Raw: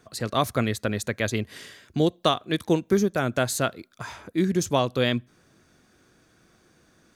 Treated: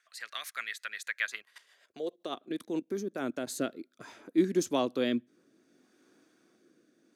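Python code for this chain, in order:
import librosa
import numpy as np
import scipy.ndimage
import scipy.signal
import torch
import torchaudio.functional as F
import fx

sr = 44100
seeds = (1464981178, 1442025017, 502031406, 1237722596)

y = fx.level_steps(x, sr, step_db=14, at=(1.35, 3.47))
y = fx.rotary_switch(y, sr, hz=8.0, then_hz=0.65, switch_at_s=2.46)
y = fx.filter_sweep_highpass(y, sr, from_hz=1800.0, to_hz=280.0, start_s=1.17, end_s=2.4, q=2.4)
y = y * 10.0 ** (-6.5 / 20.0)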